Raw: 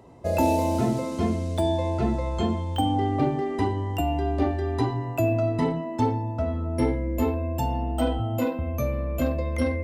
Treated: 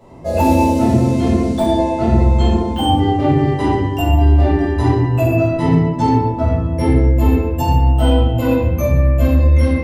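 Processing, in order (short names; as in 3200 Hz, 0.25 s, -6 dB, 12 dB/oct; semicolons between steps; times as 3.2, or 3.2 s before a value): shoebox room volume 370 m³, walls mixed, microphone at 5.6 m; in parallel at +2 dB: vocal rider within 3 dB 0.5 s; on the sum: gain -11 dB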